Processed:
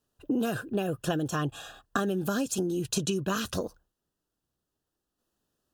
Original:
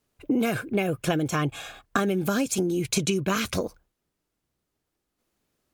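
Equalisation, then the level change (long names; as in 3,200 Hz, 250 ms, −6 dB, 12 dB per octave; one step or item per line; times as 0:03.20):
Butterworth band-reject 2,200 Hz, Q 3.1
−4.0 dB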